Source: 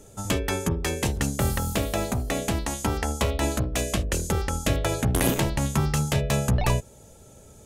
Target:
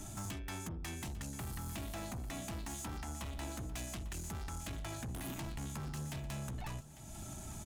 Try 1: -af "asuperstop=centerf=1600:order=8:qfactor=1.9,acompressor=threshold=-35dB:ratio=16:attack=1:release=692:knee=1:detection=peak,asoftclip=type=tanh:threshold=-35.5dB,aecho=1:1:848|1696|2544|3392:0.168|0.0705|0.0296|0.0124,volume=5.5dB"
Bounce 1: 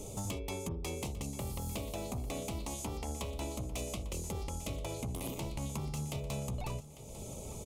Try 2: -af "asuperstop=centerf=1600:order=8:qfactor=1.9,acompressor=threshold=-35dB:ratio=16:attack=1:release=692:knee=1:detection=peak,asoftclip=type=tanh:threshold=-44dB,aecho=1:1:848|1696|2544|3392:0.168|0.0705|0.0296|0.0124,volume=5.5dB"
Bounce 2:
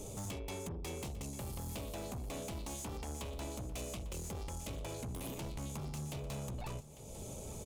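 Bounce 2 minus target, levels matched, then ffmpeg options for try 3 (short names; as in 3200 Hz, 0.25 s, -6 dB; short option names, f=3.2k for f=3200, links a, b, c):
500 Hz band +5.5 dB
-af "asuperstop=centerf=480:order=8:qfactor=1.9,acompressor=threshold=-35dB:ratio=16:attack=1:release=692:knee=1:detection=peak,asoftclip=type=tanh:threshold=-44dB,aecho=1:1:848|1696|2544|3392:0.168|0.0705|0.0296|0.0124,volume=5.5dB"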